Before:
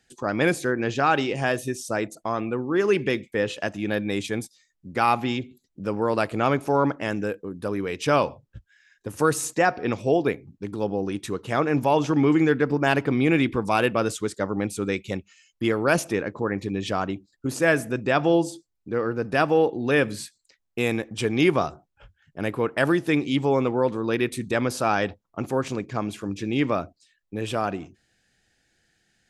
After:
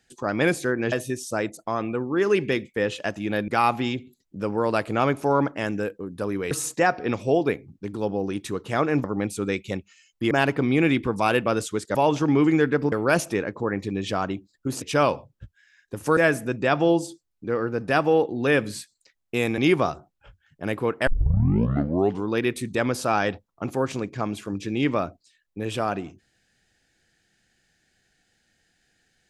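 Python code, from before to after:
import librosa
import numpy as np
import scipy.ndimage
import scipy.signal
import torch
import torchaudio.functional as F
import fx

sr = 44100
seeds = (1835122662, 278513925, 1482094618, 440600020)

y = fx.edit(x, sr, fx.cut(start_s=0.92, length_s=0.58),
    fx.cut(start_s=4.06, length_s=0.86),
    fx.move(start_s=7.95, length_s=1.35, to_s=17.61),
    fx.swap(start_s=11.83, length_s=0.97, other_s=14.44, other_length_s=1.27),
    fx.cut(start_s=21.02, length_s=0.32),
    fx.tape_start(start_s=22.83, length_s=1.26), tone=tone)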